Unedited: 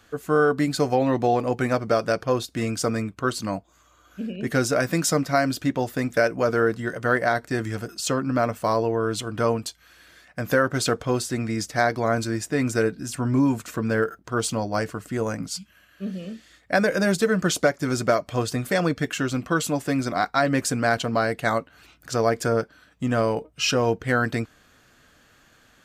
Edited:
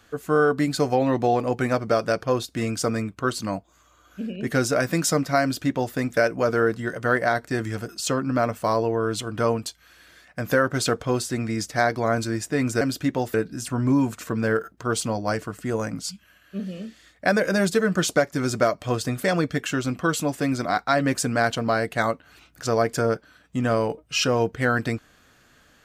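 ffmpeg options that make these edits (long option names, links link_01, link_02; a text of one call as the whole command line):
ffmpeg -i in.wav -filter_complex "[0:a]asplit=3[link_01][link_02][link_03];[link_01]atrim=end=12.812[link_04];[link_02]atrim=start=5.418:end=5.952[link_05];[link_03]atrim=start=12.808[link_06];[link_04][link_05]acrossfade=duration=0.004:curve1=hsin:curve2=hsin[link_07];[link_07][link_06]acrossfade=duration=0.004:curve1=hsin:curve2=hsin" out.wav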